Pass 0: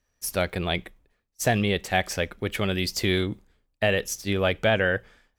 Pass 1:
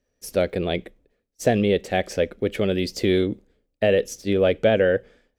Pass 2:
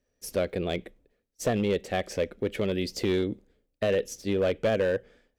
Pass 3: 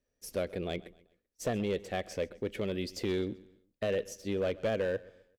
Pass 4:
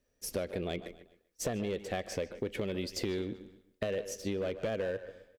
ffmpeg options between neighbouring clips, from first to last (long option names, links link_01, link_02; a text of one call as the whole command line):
ffmpeg -i in.wav -af "equalizer=frequency=250:width_type=o:width=1:gain=6,equalizer=frequency=500:width_type=o:width=1:gain=11,equalizer=frequency=1000:width_type=o:width=1:gain=-7,equalizer=frequency=16000:width_type=o:width=1:gain=-8,volume=-2dB" out.wav
ffmpeg -i in.wav -filter_complex "[0:a]asplit=2[link_01][link_02];[link_02]acompressor=threshold=-28dB:ratio=6,volume=-2dB[link_03];[link_01][link_03]amix=inputs=2:normalize=0,asoftclip=type=hard:threshold=-11.5dB,volume=-7.5dB" out.wav
ffmpeg -i in.wav -af "aecho=1:1:129|258|387:0.0944|0.0349|0.0129,volume=-6dB" out.wav
ffmpeg -i in.wav -filter_complex "[0:a]acompressor=threshold=-37dB:ratio=6,asplit=2[link_01][link_02];[link_02]adelay=150,highpass=300,lowpass=3400,asoftclip=type=hard:threshold=-35dB,volume=-12dB[link_03];[link_01][link_03]amix=inputs=2:normalize=0,volume=5.5dB" out.wav